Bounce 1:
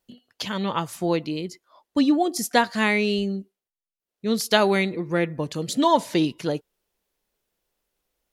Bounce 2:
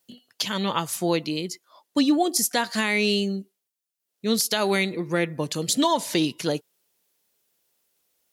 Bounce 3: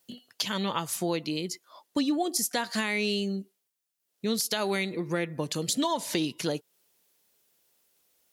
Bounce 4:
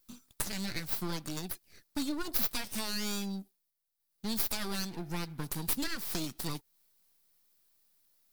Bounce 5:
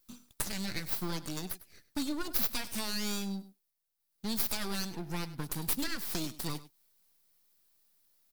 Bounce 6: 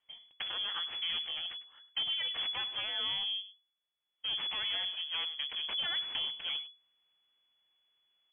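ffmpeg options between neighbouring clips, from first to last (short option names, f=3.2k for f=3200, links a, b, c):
-af "highpass=100,highshelf=f=3.3k:g=10.5,alimiter=limit=-11dB:level=0:latency=1:release=167"
-af "acompressor=threshold=-33dB:ratio=2,volume=2dB"
-filter_complex "[0:a]acrossover=split=360[a][b];[b]aeval=exprs='abs(val(0))':c=same[c];[a][c]amix=inputs=2:normalize=0,aexciter=amount=2.2:drive=3.5:freq=4k,volume=-5.5dB"
-af "aecho=1:1:101:0.15"
-af "lowpass=f=2.9k:t=q:w=0.5098,lowpass=f=2.9k:t=q:w=0.6013,lowpass=f=2.9k:t=q:w=0.9,lowpass=f=2.9k:t=q:w=2.563,afreqshift=-3400"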